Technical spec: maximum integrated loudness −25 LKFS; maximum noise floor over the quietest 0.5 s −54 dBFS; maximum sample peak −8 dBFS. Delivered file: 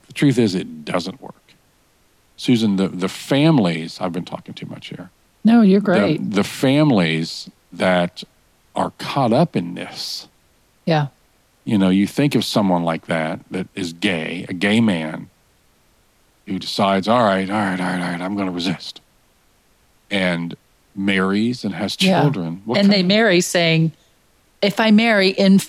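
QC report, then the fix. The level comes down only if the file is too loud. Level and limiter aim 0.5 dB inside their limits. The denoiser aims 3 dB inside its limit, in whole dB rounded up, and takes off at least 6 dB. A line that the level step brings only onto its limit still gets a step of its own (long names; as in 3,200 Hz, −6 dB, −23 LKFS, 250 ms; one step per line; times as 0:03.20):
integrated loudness −18.5 LKFS: out of spec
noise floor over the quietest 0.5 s −58 dBFS: in spec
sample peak −6.0 dBFS: out of spec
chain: level −7 dB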